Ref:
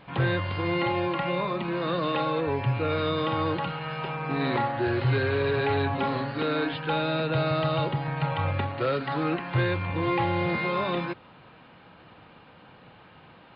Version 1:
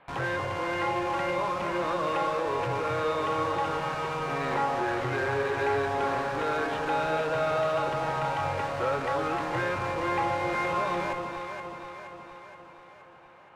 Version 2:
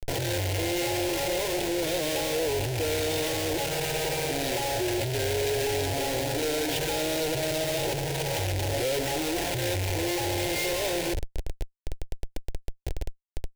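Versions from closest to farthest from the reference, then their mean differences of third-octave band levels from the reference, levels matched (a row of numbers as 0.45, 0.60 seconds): 1, 2; 7.5, 14.0 decibels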